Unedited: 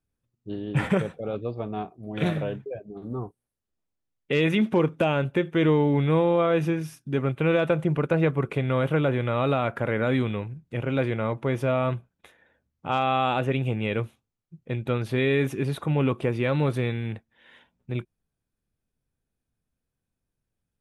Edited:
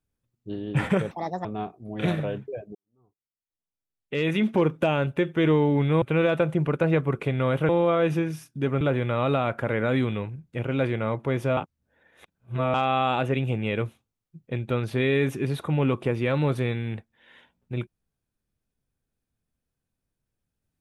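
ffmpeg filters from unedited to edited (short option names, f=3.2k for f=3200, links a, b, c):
-filter_complex "[0:a]asplit=9[a][b][c][d][e][f][g][h][i];[a]atrim=end=1.114[j];[b]atrim=start=1.11:end=1.63,asetpts=PTS-STARTPTS,asetrate=67473,aresample=44100,atrim=end_sample=14988,asetpts=PTS-STARTPTS[k];[c]atrim=start=1.626:end=2.93,asetpts=PTS-STARTPTS,afade=t=out:st=1.3:d=0.004:c=hsin[l];[d]atrim=start=2.93:end=6.202,asetpts=PTS-STARTPTS,afade=t=in:d=1.77:c=qua[m];[e]atrim=start=7.318:end=8.992[n];[f]atrim=start=6.198:end=7.322[o];[g]atrim=start=8.988:end=11.752[p];[h]atrim=start=11.748:end=12.922,asetpts=PTS-STARTPTS,areverse[q];[i]atrim=start=12.918[r];[j][k]acrossfade=d=0.004:c1=hsin:c2=hsin[s];[l][m]concat=n=2:v=0:a=1[t];[s][t]acrossfade=d=0.004:c1=hsin:c2=hsin[u];[u][n]acrossfade=d=0.004:c1=hsin:c2=hsin[v];[v][o]acrossfade=d=0.004:c1=hsin:c2=hsin[w];[w][p]acrossfade=d=0.004:c1=hsin:c2=hsin[x];[x][q]acrossfade=d=0.004:c1=hsin:c2=hsin[y];[y][r]acrossfade=d=0.004:c1=hsin:c2=hsin"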